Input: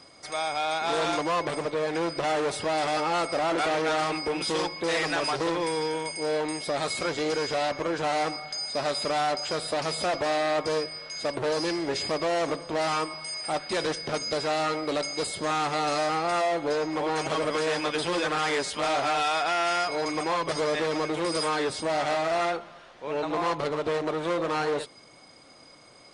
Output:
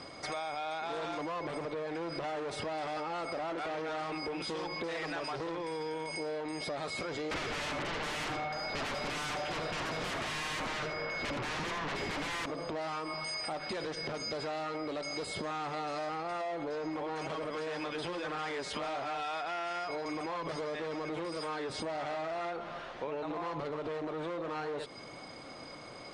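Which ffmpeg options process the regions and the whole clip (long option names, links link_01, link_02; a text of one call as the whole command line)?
ffmpeg -i in.wav -filter_complex "[0:a]asettb=1/sr,asplit=3[link_01][link_02][link_03];[link_01]atrim=end=7.314[link_04];[link_02]atrim=start=7.31:end=12.46,asetpts=PTS-STARTPTS,afade=type=in:duration=0.004:curve=qsin,afade=type=out:start_time=5.146:duration=0.004:curve=qsin,lowpass=2300,aeval=exprs='0.133*sin(PI/2*7.94*val(0)/0.133)':channel_layout=same,aecho=1:1:79:0.422,atrim=end_sample=227115[link_05];[link_03]atrim=start=12.456[link_06];[link_04][link_05]acrossfade=duration=0.004:curve1=hsin:curve2=qsin[link_07];[link_07][link_06]acrossfade=duration=0.004:curve1=qsin:curve2=hsin,alimiter=level_in=4.5dB:limit=-24dB:level=0:latency=1:release=44,volume=-4.5dB,aemphasis=mode=reproduction:type=50fm,acompressor=threshold=-41dB:ratio=6,volume=6.5dB" out.wav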